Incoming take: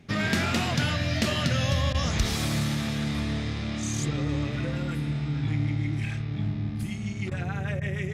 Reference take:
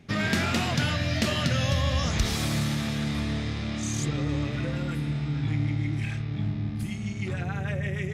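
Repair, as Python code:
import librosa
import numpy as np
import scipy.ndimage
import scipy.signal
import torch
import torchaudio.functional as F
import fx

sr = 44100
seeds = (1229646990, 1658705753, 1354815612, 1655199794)

y = fx.fix_interpolate(x, sr, at_s=(1.93, 7.3, 7.8), length_ms=13.0)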